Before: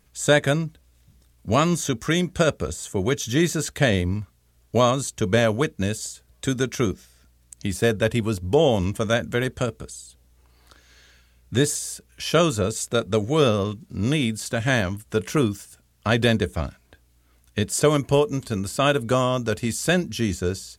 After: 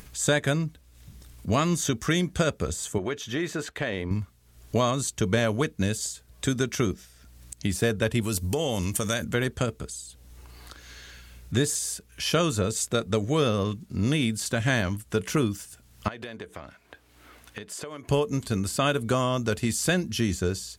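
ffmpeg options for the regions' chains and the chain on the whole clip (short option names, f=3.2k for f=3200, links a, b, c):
-filter_complex "[0:a]asettb=1/sr,asplit=3[a][b][c];[a]atrim=end=2.984[d];[b]atrim=start=2.98:end=4.11,asetpts=PTS-STARTPTS,afade=t=in:d=0.004:c=qsin,afade=t=out:st=1.126:d=0.004:c=qsin,bass=f=250:g=-11,treble=f=4k:g=-14,acompressor=threshold=-24dB:ratio=4:attack=3.2:release=140:knee=1:detection=peak[e];[c]atrim=start=4.106[f];[d][e]acrossfade=d=0.004:c1=hsin:c2=qsin[g];[g][f]acrossfade=d=0.004:c1=qsin:c2=hsin,asettb=1/sr,asplit=3[h][i][j];[h]atrim=end=8.214[k];[i]atrim=start=8.21:end=9.24,asetpts=PTS-STARTPTS,afade=t=in:d=0.004:c=qsin,afade=t=out:st=1.026:d=0.004:c=qsin,bandreject=f=3.3k:w=24,acompressor=threshold=-25dB:ratio=2.5:attack=3.2:release=140:knee=1:detection=peak,equalizer=f=13k:t=o:w=2.2:g=14.5[l];[j]atrim=start=9.236[m];[k][l]acrossfade=d=0.004:c1=hsin:c2=qsin[n];[n][m]acrossfade=d=0.004:c1=qsin:c2=hsin,asettb=1/sr,asplit=3[o][p][q];[o]atrim=end=16.084[r];[p]atrim=start=16.08:end=18.08,asetpts=PTS-STARTPTS,afade=t=in:d=0.004:c=qsin,afade=t=out:st=1.996:d=0.004:c=qsin,bass=f=250:g=-13,treble=f=4k:g=-10,acompressor=threshold=-34dB:ratio=10:attack=3.2:release=140:knee=1:detection=peak,highpass=52[s];[q]atrim=start=18.076[t];[r][s]acrossfade=d=0.004:c1=hsin:c2=qsin[u];[u][t]acrossfade=d=0.004:c1=qsin:c2=hsin,acompressor=threshold=-23dB:ratio=2,equalizer=f=580:w=1.5:g=-2.5,acompressor=mode=upward:threshold=-38dB:ratio=2.5,volume=1dB"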